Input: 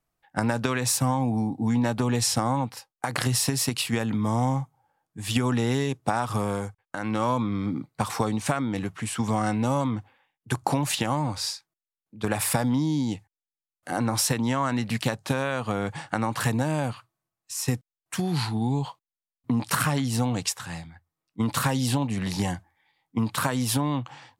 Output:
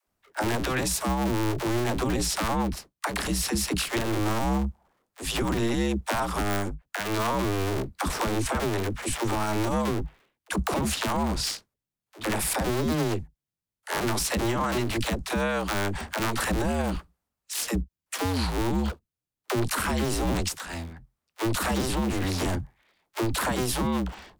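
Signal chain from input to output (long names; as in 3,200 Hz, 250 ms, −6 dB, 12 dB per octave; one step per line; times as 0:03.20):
sub-harmonics by changed cycles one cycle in 2, inverted
all-pass dispersion lows, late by 73 ms, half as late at 320 Hz
brickwall limiter −19 dBFS, peak gain reduction 9 dB
level +1.5 dB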